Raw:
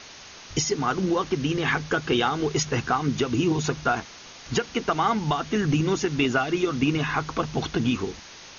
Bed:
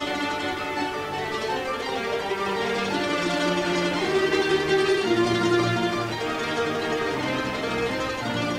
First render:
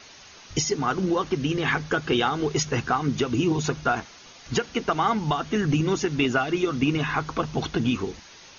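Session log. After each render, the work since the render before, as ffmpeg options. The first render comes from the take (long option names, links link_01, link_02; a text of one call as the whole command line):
ffmpeg -i in.wav -af "afftdn=noise_reduction=6:noise_floor=-45" out.wav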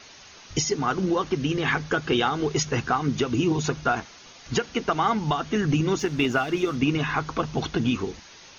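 ffmpeg -i in.wav -filter_complex "[0:a]asplit=3[link_01][link_02][link_03];[link_01]afade=type=out:start_time=5.98:duration=0.02[link_04];[link_02]aeval=exprs='sgn(val(0))*max(abs(val(0))-0.00447,0)':channel_layout=same,afade=type=in:start_time=5.98:duration=0.02,afade=type=out:start_time=6.75:duration=0.02[link_05];[link_03]afade=type=in:start_time=6.75:duration=0.02[link_06];[link_04][link_05][link_06]amix=inputs=3:normalize=0" out.wav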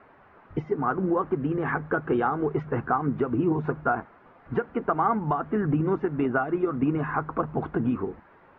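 ffmpeg -i in.wav -af "lowpass=frequency=1500:width=0.5412,lowpass=frequency=1500:width=1.3066,lowshelf=frequency=110:gain=-7" out.wav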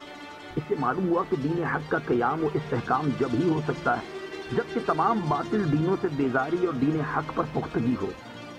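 ffmpeg -i in.wav -i bed.wav -filter_complex "[1:a]volume=-15dB[link_01];[0:a][link_01]amix=inputs=2:normalize=0" out.wav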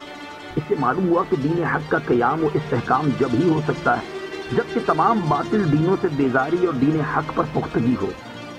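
ffmpeg -i in.wav -af "volume=6dB" out.wav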